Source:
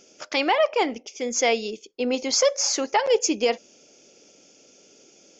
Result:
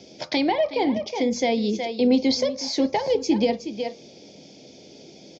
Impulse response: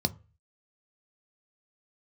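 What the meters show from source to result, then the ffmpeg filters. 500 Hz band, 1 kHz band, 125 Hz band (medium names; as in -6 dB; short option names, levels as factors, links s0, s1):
-0.5 dB, -2.5 dB, no reading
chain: -filter_complex "[0:a]aecho=1:1:367:0.2,acrossover=split=260[s0][s1];[s1]acompressor=threshold=0.02:ratio=3[s2];[s0][s2]amix=inputs=2:normalize=0,asplit=2[s3][s4];[1:a]atrim=start_sample=2205,asetrate=39690,aresample=44100[s5];[s4][s5]afir=irnorm=-1:irlink=0,volume=1.41[s6];[s3][s6]amix=inputs=2:normalize=0,volume=0.631"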